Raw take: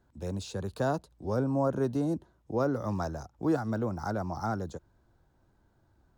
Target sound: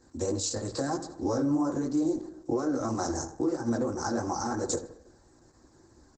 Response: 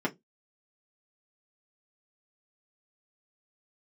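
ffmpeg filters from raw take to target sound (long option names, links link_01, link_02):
-filter_complex "[0:a]acompressor=threshold=-30dB:ratio=16,aresample=22050,aresample=44100,aexciter=amount=10.5:drive=6.3:freq=4400,highshelf=frequency=3300:gain=-5.5,bandreject=frequency=550:width=12,flanger=delay=17:depth=6.2:speed=3,acontrast=59,asplit=2[link_01][link_02];[link_02]adelay=76,lowpass=frequency=2900:poles=1,volume=-12dB,asplit=2[link_03][link_04];[link_04]adelay=76,lowpass=frequency=2900:poles=1,volume=0.51,asplit=2[link_05][link_06];[link_06]adelay=76,lowpass=frequency=2900:poles=1,volume=0.51,asplit=2[link_07][link_08];[link_08]adelay=76,lowpass=frequency=2900:poles=1,volume=0.51,asplit=2[link_09][link_10];[link_10]adelay=76,lowpass=frequency=2900:poles=1,volume=0.51[link_11];[link_01][link_03][link_05][link_07][link_09][link_11]amix=inputs=6:normalize=0,asetrate=46722,aresample=44100,atempo=0.943874,asplit=2[link_12][link_13];[1:a]atrim=start_sample=2205,asetrate=57330,aresample=44100,highshelf=frequency=6200:gain=3[link_14];[link_13][link_14]afir=irnorm=-1:irlink=0,volume=-8dB[link_15];[link_12][link_15]amix=inputs=2:normalize=0,alimiter=limit=-22dB:level=0:latency=1:release=388,volume=3dB" -ar 48000 -c:a libopus -b:a 12k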